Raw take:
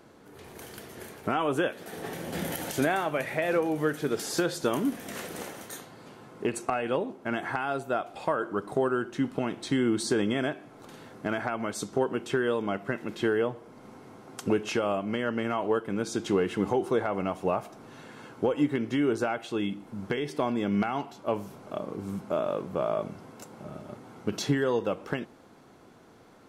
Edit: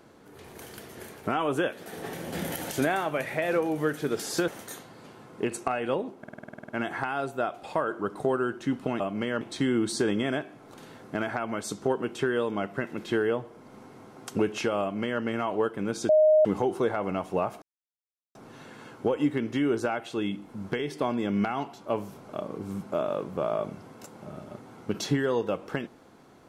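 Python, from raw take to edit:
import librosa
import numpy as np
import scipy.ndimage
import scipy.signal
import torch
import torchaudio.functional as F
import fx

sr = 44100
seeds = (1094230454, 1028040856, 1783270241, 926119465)

y = fx.edit(x, sr, fx.cut(start_s=4.48, length_s=1.02),
    fx.stutter(start_s=7.21, slice_s=0.05, count=11),
    fx.duplicate(start_s=14.92, length_s=0.41, to_s=9.52),
    fx.bleep(start_s=16.2, length_s=0.36, hz=619.0, db=-15.5),
    fx.insert_silence(at_s=17.73, length_s=0.73), tone=tone)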